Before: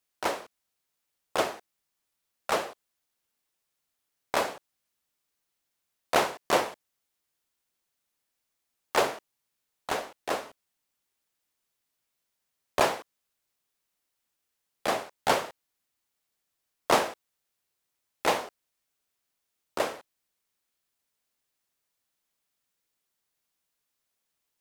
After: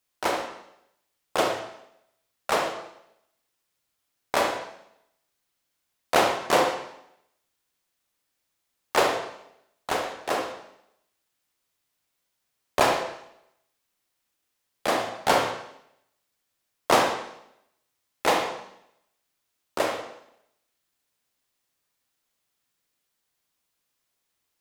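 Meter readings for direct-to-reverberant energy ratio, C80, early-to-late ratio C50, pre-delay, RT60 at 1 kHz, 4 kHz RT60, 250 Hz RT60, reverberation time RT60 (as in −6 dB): 3.0 dB, 9.0 dB, 5.0 dB, 36 ms, 0.75 s, 0.75 s, 0.85 s, 0.75 s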